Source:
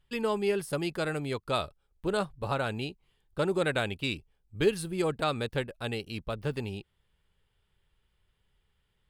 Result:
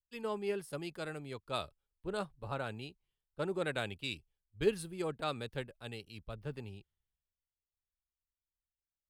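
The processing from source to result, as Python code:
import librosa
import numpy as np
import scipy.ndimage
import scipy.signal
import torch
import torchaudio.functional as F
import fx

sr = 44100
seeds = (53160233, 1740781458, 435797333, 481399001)

y = fx.band_widen(x, sr, depth_pct=70)
y = F.gain(torch.from_numpy(y), -8.5).numpy()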